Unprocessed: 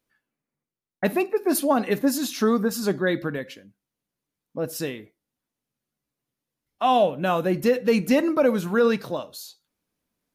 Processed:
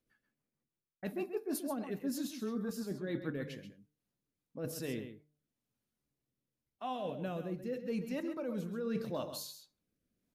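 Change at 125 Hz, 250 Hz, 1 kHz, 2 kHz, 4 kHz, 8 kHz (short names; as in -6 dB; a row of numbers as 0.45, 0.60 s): -11.0, -14.0, -20.0, -19.0, -15.0, -14.0 dB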